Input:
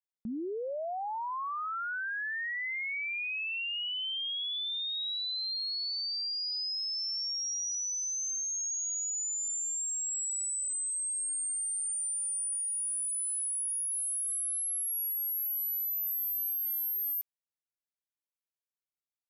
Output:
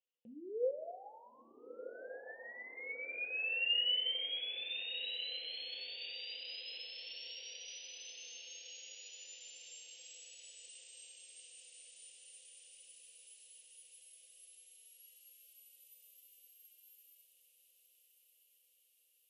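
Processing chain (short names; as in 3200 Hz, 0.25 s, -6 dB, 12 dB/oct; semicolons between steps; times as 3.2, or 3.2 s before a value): limiter -40.5 dBFS, peak gain reduction 10.5 dB; double band-pass 1200 Hz, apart 2.5 oct; on a send: diffused feedback echo 1.358 s, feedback 62%, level -9.5 dB; on the sum: two-slope reverb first 0.36 s, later 2.1 s, from -18 dB, DRR 3.5 dB; gain +9.5 dB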